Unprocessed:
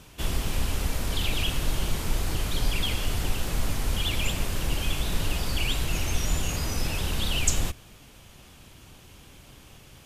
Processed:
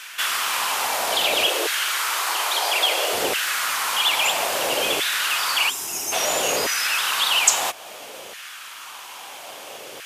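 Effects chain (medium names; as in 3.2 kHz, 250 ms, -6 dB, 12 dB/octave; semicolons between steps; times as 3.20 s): LFO high-pass saw down 0.6 Hz 450–1700 Hz; in parallel at +1 dB: compression, threshold -41 dBFS, peak gain reduction 19.5 dB; 1.46–3.13 s: on the sum: brick-wall FIR high-pass 290 Hz; 5.70–6.12 s: time-frequency box 440–4900 Hz -14 dB; trim +8 dB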